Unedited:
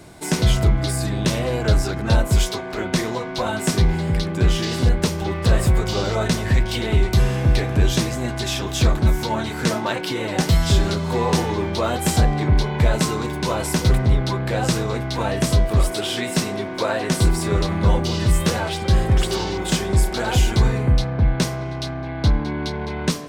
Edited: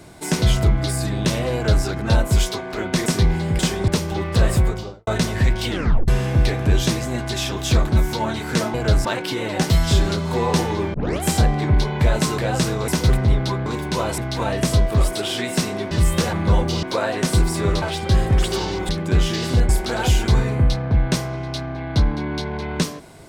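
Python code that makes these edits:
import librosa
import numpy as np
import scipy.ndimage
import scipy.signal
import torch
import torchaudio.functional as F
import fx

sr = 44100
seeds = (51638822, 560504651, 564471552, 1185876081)

y = fx.studio_fade_out(x, sr, start_s=5.66, length_s=0.51)
y = fx.edit(y, sr, fx.duplicate(start_s=1.54, length_s=0.31, to_s=9.84),
    fx.cut(start_s=3.06, length_s=0.59),
    fx.swap(start_s=4.18, length_s=0.8, other_s=19.68, other_length_s=0.29),
    fx.tape_stop(start_s=6.8, length_s=0.38),
    fx.tape_start(start_s=11.73, length_s=0.29),
    fx.swap(start_s=13.17, length_s=0.52, other_s=14.47, other_length_s=0.5),
    fx.swap(start_s=16.7, length_s=0.99, other_s=18.19, other_length_s=0.42), tone=tone)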